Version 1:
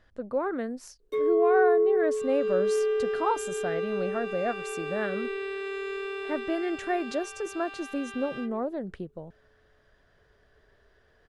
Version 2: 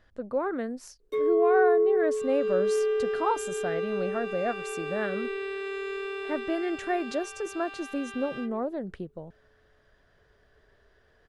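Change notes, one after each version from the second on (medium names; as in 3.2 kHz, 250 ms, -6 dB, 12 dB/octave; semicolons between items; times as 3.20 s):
no change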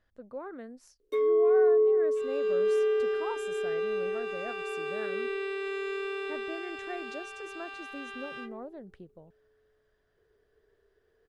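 speech -11.5 dB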